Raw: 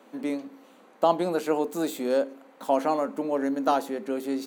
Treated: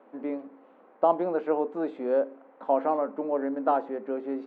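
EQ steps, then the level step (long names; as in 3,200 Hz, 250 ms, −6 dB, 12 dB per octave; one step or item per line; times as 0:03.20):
bass and treble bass −13 dB, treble −14 dB
head-to-tape spacing loss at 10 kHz 28 dB
high-shelf EQ 3,100 Hz −11 dB
+2.5 dB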